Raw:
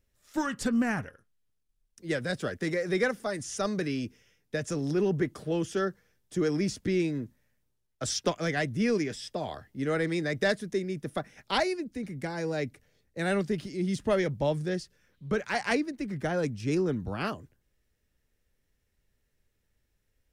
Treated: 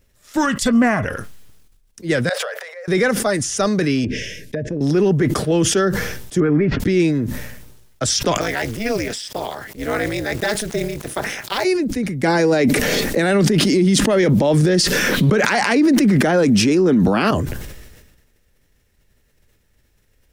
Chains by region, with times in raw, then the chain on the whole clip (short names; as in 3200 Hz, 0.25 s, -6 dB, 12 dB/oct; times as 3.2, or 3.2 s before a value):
0.56–1.05 small resonant body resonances 640/1100/2000/3400 Hz, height 12 dB + three-band expander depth 100%
2.29–2.88 bell 7600 Hz -9 dB 2 oct + compressor 8:1, threshold -43 dBFS + steep high-pass 490 Hz 72 dB/oct
4.04–4.81 Chebyshev band-stop 630–1600 Hz, order 4 + treble ducked by the level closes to 1000 Hz, closed at -33 dBFS + compressor 4:1, threshold -33 dBFS
6.4–6.8 LPF 2000 Hz 24 dB/oct + comb 7.3 ms, depth 57%
8.41–11.65 block floating point 5-bit + HPF 410 Hz 6 dB/oct + AM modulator 220 Hz, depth 90%
12.23–17.31 resonant low shelf 150 Hz -12 dB, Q 1.5 + fast leveller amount 100%
whole clip: maximiser +20.5 dB; sustainer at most 44 dB/s; gain -7.5 dB